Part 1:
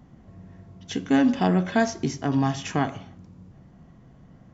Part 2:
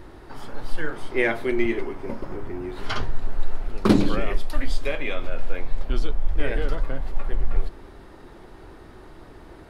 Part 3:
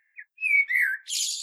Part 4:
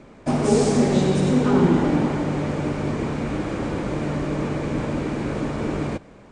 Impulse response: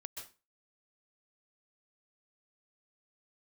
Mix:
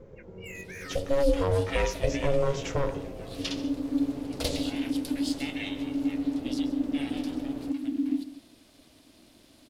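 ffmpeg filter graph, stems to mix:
-filter_complex "[0:a]equalizer=frequency=250:width=5.6:gain=9.5,alimiter=limit=-16.5dB:level=0:latency=1,volume=-1dB,asplit=2[link_01][link_02];[1:a]aexciter=amount=9:drive=5.3:freq=2300,adelay=550,volume=-18.5dB,asplit=2[link_03][link_04];[link_04]volume=-3dB[link_05];[2:a]aecho=1:1:3.3:0.65,asoftclip=type=hard:threshold=-29dB,volume=-10.5dB[link_06];[3:a]acompressor=threshold=-25dB:ratio=6,adelay=1750,volume=-15dB[link_07];[link_02]apad=whole_len=63217[link_08];[link_06][link_08]sidechaincompress=threshold=-33dB:ratio=8:attack=16:release=526[link_09];[4:a]atrim=start_sample=2205[link_10];[link_05][link_10]afir=irnorm=-1:irlink=0[link_11];[link_01][link_03][link_09][link_07][link_11]amix=inputs=5:normalize=0,lowshelf=frequency=340:gain=5,aeval=exprs='val(0)*sin(2*PI*280*n/s)':channel_layout=same"

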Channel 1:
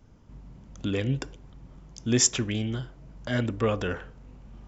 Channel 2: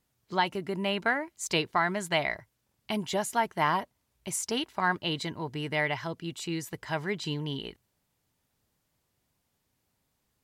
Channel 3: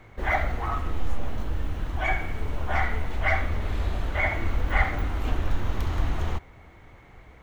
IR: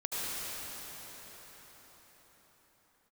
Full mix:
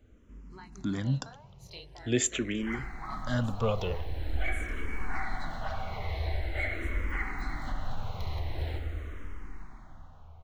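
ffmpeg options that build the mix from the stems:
-filter_complex "[0:a]volume=-0.5dB[link_01];[1:a]flanger=delay=20:depth=6.4:speed=2.3,alimiter=limit=-22.5dB:level=0:latency=1:release=256,adelay=200,volume=-13dB,asplit=2[link_02][link_03];[link_03]volume=-22.5dB[link_04];[2:a]dynaudnorm=framelen=170:gausssize=11:maxgain=11.5dB,flanger=delay=0.2:depth=8.9:regen=84:speed=1.5:shape=triangular,adelay=2400,volume=-9.5dB,asplit=2[link_05][link_06];[link_06]volume=-10dB[link_07];[link_02][link_05]amix=inputs=2:normalize=0,equalizer=frequency=4100:width=7.9:gain=13,alimiter=limit=-23dB:level=0:latency=1:release=374,volume=0dB[link_08];[3:a]atrim=start_sample=2205[link_09];[link_04][link_07]amix=inputs=2:normalize=0[link_10];[link_10][link_09]afir=irnorm=-1:irlink=0[link_11];[link_01][link_08][link_11]amix=inputs=3:normalize=0,asplit=2[link_12][link_13];[link_13]afreqshift=-0.45[link_14];[link_12][link_14]amix=inputs=2:normalize=1"

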